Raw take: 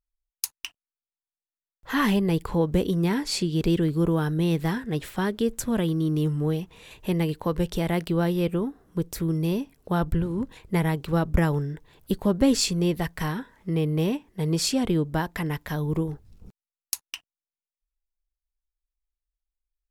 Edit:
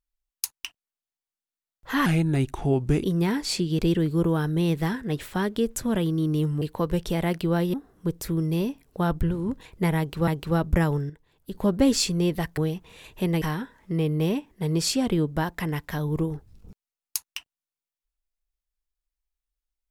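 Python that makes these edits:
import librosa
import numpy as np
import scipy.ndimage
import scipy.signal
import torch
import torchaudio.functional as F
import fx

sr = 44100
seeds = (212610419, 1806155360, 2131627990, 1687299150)

y = fx.edit(x, sr, fx.speed_span(start_s=2.06, length_s=0.8, speed=0.82),
    fx.move(start_s=6.44, length_s=0.84, to_s=13.19),
    fx.cut(start_s=8.4, length_s=0.25),
    fx.repeat(start_s=10.89, length_s=0.3, count=2),
    fx.clip_gain(start_s=11.71, length_s=0.45, db=-10.0), tone=tone)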